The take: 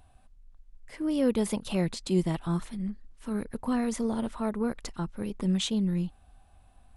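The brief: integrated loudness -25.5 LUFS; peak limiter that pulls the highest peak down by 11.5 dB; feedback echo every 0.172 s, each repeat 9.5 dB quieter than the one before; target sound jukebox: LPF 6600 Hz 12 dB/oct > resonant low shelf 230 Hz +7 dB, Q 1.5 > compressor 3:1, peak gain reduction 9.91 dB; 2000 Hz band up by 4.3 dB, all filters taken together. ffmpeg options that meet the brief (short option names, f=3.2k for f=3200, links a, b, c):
-af "equalizer=f=2k:t=o:g=5.5,alimiter=level_in=1.5dB:limit=-24dB:level=0:latency=1,volume=-1.5dB,lowpass=6.6k,lowshelf=f=230:t=q:w=1.5:g=7,aecho=1:1:172|344|516|688:0.335|0.111|0.0365|0.012,acompressor=threshold=-34dB:ratio=3,volume=11dB"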